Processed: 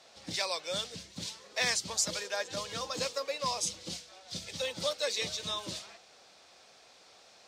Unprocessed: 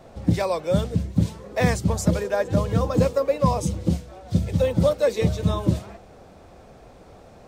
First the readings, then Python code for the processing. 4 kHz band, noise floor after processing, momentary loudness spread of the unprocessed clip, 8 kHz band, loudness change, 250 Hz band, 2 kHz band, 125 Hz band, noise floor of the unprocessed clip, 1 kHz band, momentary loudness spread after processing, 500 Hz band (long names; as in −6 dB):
+5.5 dB, −59 dBFS, 6 LU, +3.0 dB, −10.5 dB, −23.0 dB, −3.0 dB, −27.5 dB, −48 dBFS, −10.0 dB, 12 LU, −15.0 dB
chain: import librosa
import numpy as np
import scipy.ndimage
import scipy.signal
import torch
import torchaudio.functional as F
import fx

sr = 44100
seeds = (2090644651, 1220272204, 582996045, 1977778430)

y = fx.bandpass_q(x, sr, hz=4700.0, q=1.4)
y = F.gain(torch.from_numpy(y), 7.0).numpy()